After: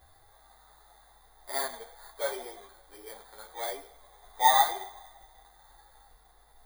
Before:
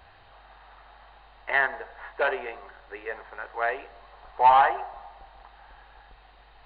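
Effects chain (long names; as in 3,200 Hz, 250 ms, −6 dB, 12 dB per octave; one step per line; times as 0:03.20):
samples in bit-reversed order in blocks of 16 samples
harmonic and percussive parts rebalanced percussive −10 dB
string-ensemble chorus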